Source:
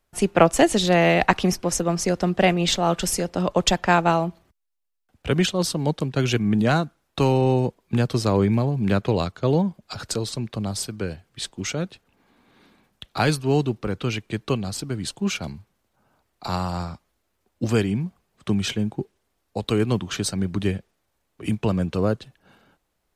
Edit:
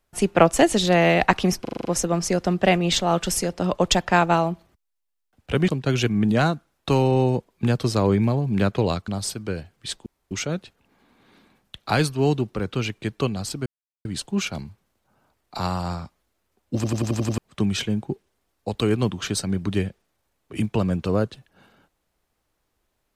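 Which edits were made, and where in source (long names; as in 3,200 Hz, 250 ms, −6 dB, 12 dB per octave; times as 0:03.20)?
0:01.61: stutter 0.04 s, 7 plays
0:05.44–0:05.98: remove
0:09.38–0:10.61: remove
0:11.59: splice in room tone 0.25 s
0:14.94: splice in silence 0.39 s
0:17.64: stutter in place 0.09 s, 7 plays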